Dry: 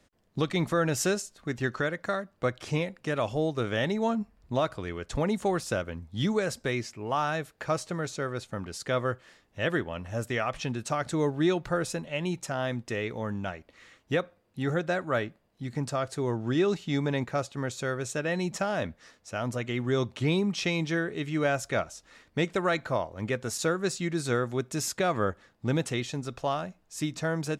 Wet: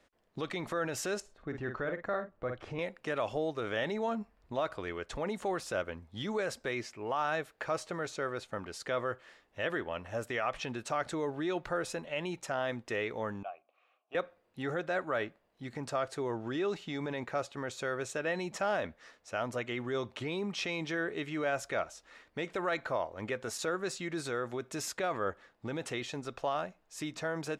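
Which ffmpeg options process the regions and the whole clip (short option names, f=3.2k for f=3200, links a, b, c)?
-filter_complex "[0:a]asettb=1/sr,asplit=3[a][b][c];[a]atrim=end=1.204[d];[b]atrim=start=1.2:end=2.79,asetpts=PTS-STARTPTS,afade=t=in:d=0.004:c=qsin,afade=t=out:st=1.586:d=0.004:c=qsin,lowpass=f=1.2k:p=1,lowshelf=f=89:g=11.5,asplit=2[e][f];[f]adelay=49,volume=-10dB[g];[e][g]amix=inputs=2:normalize=0,atrim=end_sample=70119[h];[c]atrim=start=2.786[i];[d][h]acrossfade=d=0.004:c1=hsin:c2=qsin[j];[j][i]acrossfade=d=0.004:c1=qsin:c2=hsin,asettb=1/sr,asplit=3[k][l][m];[k]atrim=end=13.434[n];[l]atrim=start=13.43:end=14.15,asetpts=PTS-STARTPTS,afade=t=in:d=0.004:c=qsin,afade=t=out:st=0.716:d=0.004:c=qsin,asplit=3[o][p][q];[o]bandpass=f=730:t=q:w=8,volume=0dB[r];[p]bandpass=f=1.09k:t=q:w=8,volume=-6dB[s];[q]bandpass=f=2.44k:t=q:w=8,volume=-9dB[t];[r][s][t]amix=inputs=3:normalize=0,bandreject=f=60:t=h:w=6,bandreject=f=120:t=h:w=6,bandreject=f=180:t=h:w=6,bandreject=f=240:t=h:w=6,bandreject=f=300:t=h:w=6,bandreject=f=360:t=h:w=6[u];[m]atrim=start=14.146[v];[n][u]acrossfade=d=0.004:c1=hsin:c2=qsin[w];[w][v]acrossfade=d=0.004:c1=qsin:c2=hsin,lowshelf=f=78:g=9.5,alimiter=limit=-22dB:level=0:latency=1:release=24,bass=f=250:g=-14,treble=f=4k:g=-7"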